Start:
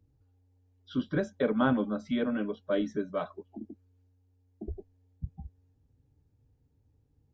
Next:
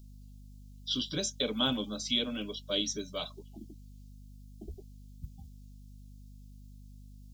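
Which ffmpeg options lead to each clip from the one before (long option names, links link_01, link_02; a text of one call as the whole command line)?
ffmpeg -i in.wav -af "aexciter=amount=15.1:drive=7.7:freq=2800,aeval=exprs='val(0)+0.00708*(sin(2*PI*50*n/s)+sin(2*PI*2*50*n/s)/2+sin(2*PI*3*50*n/s)/3+sin(2*PI*4*50*n/s)/4+sin(2*PI*5*50*n/s)/5)':channel_layout=same,volume=-6.5dB" out.wav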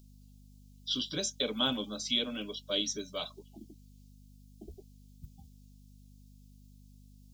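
ffmpeg -i in.wav -af "lowshelf=frequency=170:gain=-7" out.wav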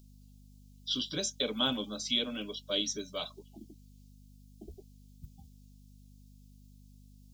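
ffmpeg -i in.wav -af anull out.wav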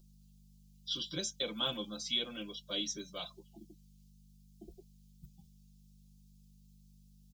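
ffmpeg -i in.wav -af "aecho=1:1:5.8:0.79,volume=-6dB" out.wav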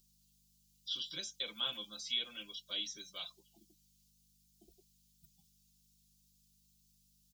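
ffmpeg -i in.wav -filter_complex "[0:a]acrossover=split=3600[link_01][link_02];[link_02]acompressor=threshold=-48dB:ratio=4:attack=1:release=60[link_03];[link_01][link_03]amix=inputs=2:normalize=0,tiltshelf=frequency=1200:gain=-9,volume=-5.5dB" out.wav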